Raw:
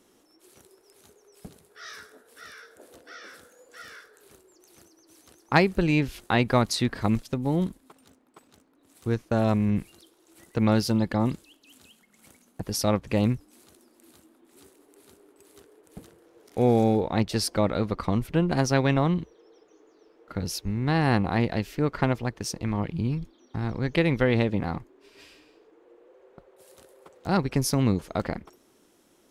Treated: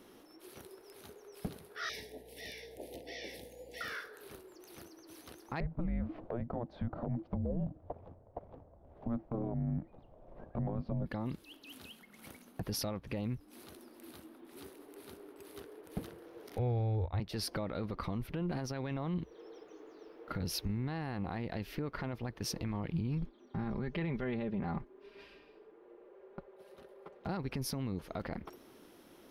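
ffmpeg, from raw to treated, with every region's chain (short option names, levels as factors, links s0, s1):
-filter_complex "[0:a]asettb=1/sr,asplit=3[s0][s1][s2];[s0]atrim=end=1.894[s3];[s1]atrim=start=1.89:end=3.81,asetpts=PTS-STARTPTS,afade=t=in:d=0.004:c=qsin,afade=t=out:st=1.916:d=0.004:c=qsin,aeval=exprs='val(0)+0.000501*(sin(2*PI*60*n/s)+sin(2*PI*2*60*n/s)/2+sin(2*PI*3*60*n/s)/3+sin(2*PI*4*60*n/s)/4+sin(2*PI*5*60*n/s)/5)':c=same,asuperstop=centerf=1300:order=8:qfactor=1.2[s4];[s2]atrim=start=3.806[s5];[s3][s4]acrossfade=d=0.004:c1=hsin:c2=qsin[s6];[s6][s5]acrossfade=d=0.004:c1=qsin:c2=hsin,asettb=1/sr,asplit=3[s7][s8][s9];[s7]atrim=end=5.604[s10];[s8]atrim=start=5.6:end=11.06,asetpts=PTS-STARTPTS,afade=t=in:d=0.004:c=qsin,afade=t=out:st=5.456:d=0.004:c=qsin,tremolo=f=1.7:d=0.32,lowpass=f=970:t=q:w=4.1,afreqshift=-350[s11];[s9]atrim=start=11.056[s12];[s10][s11]acrossfade=d=0.004:c1=hsin:c2=qsin[s13];[s13][s12]acrossfade=d=0.004:c1=qsin:c2=hsin,asettb=1/sr,asplit=3[s14][s15][s16];[s14]atrim=end=16.584[s17];[s15]atrim=start=16.58:end=17.2,asetpts=PTS-STARTPTS,afade=t=in:d=0.004:c=qsin,afade=t=out:st=0.616:d=0.004:c=qsin,agate=range=0.0224:threshold=0.0562:ratio=3:release=100:detection=peak,lowpass=f=4500:w=0.5412,lowpass=f=4500:w=1.3066,lowshelf=f=130:t=q:w=3:g=13[s18];[s16]atrim=start=17.196[s19];[s17][s18]acrossfade=d=0.004:c1=hsin:c2=qsin[s20];[s20][s19]acrossfade=d=0.004:c1=qsin:c2=hsin,asettb=1/sr,asplit=3[s21][s22][s23];[s21]atrim=end=23.224[s24];[s22]atrim=start=23.22:end=27.29,asetpts=PTS-STARTPTS,afade=t=in:d=0.004:c=qsin,afade=t=out:st=4.066:d=0.004:c=qsin,lowpass=f=2100:p=1,aecho=1:1:5:0.55,atrim=end_sample=179487,agate=range=0.501:threshold=0.00447:ratio=16:release=100:detection=peak[s25];[s23]atrim=start=27.286[s26];[s24][s25]acrossfade=d=0.004:c1=hsin:c2=qsin[s27];[s27][s26]acrossfade=d=0.004:c1=qsin:c2=hsin,equalizer=f=7500:t=o:w=0.63:g=-14,acompressor=threshold=0.02:ratio=6,alimiter=level_in=2.51:limit=0.0631:level=0:latency=1:release=12,volume=0.398,volume=1.68"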